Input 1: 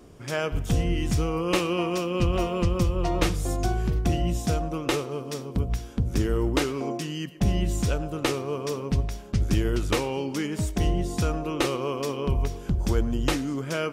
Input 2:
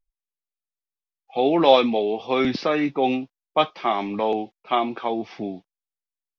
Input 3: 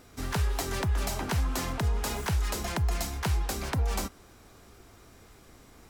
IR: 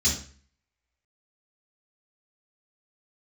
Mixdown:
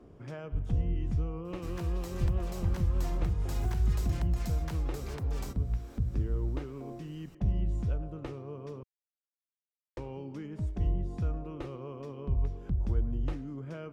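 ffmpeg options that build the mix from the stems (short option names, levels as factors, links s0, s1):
-filter_complex "[0:a]lowpass=f=1000:p=1,volume=0.668,asplit=3[s0][s1][s2];[s0]atrim=end=8.83,asetpts=PTS-STARTPTS,afade=t=out:st=8.826:d=0.004:c=hsin[s3];[s1]atrim=start=8.83:end=9.97,asetpts=PTS-STARTPTS,volume=0[s4];[s2]atrim=start=9.97,asetpts=PTS-STARTPTS,afade=t=in:d=0.004:c=hsin[s5];[s3][s4][s5]concat=n=3:v=0:a=1[s6];[2:a]equalizer=f=9900:w=7.8:g=-6.5,alimiter=limit=0.0631:level=0:latency=1:release=81,adelay=1450,volume=0.891[s7];[s6][s7]amix=inputs=2:normalize=0,acrossover=split=140[s8][s9];[s9]acompressor=threshold=0.00398:ratio=2[s10];[s8][s10]amix=inputs=2:normalize=0"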